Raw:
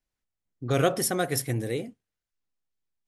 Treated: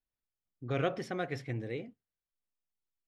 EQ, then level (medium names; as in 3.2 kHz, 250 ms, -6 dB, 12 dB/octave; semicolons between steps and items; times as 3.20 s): dynamic bell 2.3 kHz, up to +6 dB, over -48 dBFS, Q 1.9; distance through air 200 m; -8.0 dB